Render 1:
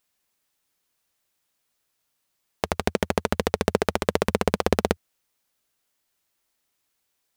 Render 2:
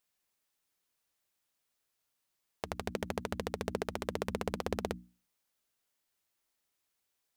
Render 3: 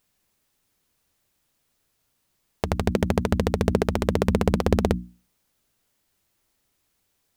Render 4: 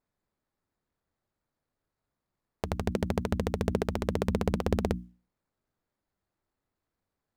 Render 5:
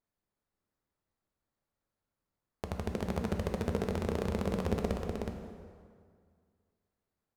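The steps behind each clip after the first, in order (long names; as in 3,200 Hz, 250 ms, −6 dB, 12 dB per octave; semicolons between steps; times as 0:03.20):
mains-hum notches 60/120/180/240/300 Hz; brickwall limiter −10 dBFS, peak gain reduction 8 dB; level −6.5 dB
low-shelf EQ 310 Hz +12 dB; level +9 dB
running median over 15 samples; level −7 dB
single-tap delay 368 ms −4 dB; dense smooth reverb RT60 2.1 s, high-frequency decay 0.7×, DRR 4.5 dB; level −6 dB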